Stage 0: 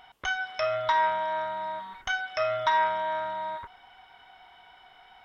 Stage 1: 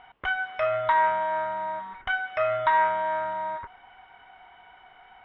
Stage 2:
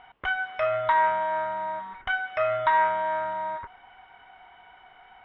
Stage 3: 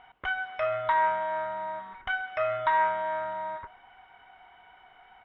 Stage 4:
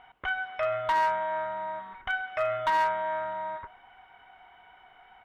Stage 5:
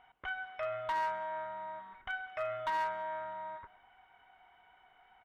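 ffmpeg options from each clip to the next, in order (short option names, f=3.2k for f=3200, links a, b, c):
-af "lowpass=f=2.7k:w=0.5412,lowpass=f=2.7k:w=1.3066,volume=2.5dB"
-af anull
-af "aecho=1:1:132:0.106,volume=-3dB"
-af "volume=20.5dB,asoftclip=hard,volume=-20.5dB"
-af "aecho=1:1:193:0.0708,volume=-8.5dB"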